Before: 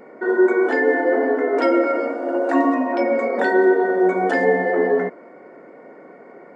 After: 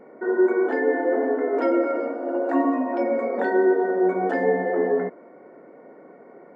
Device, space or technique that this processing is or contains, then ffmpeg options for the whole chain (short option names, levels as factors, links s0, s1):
through cloth: -af "highshelf=f=2200:g=-13,volume=0.708"